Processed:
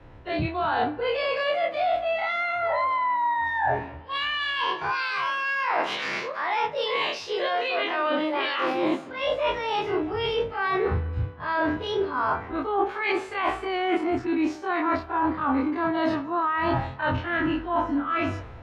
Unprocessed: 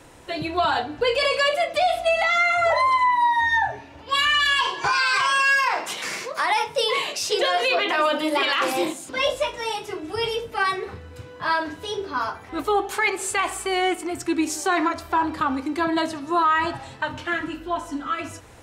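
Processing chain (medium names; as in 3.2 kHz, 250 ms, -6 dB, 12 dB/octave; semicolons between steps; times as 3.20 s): every event in the spectrogram widened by 60 ms; reverse; compression 16:1, threshold -26 dBFS, peak gain reduction 14 dB; reverse; distance through air 290 m; feedback echo behind a band-pass 201 ms, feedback 70%, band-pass 1.1 kHz, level -21 dB; three bands expanded up and down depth 70%; trim +6 dB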